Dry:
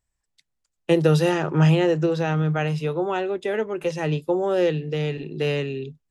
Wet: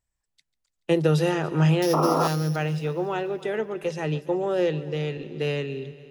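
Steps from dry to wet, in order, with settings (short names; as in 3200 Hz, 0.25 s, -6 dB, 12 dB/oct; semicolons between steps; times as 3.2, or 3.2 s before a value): 1.82–2.56 sample sorter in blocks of 8 samples; multi-head echo 0.143 s, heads first and second, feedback 58%, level -21 dB; 1.93–2.28 painted sound noise 230–1400 Hz -20 dBFS; gain -3 dB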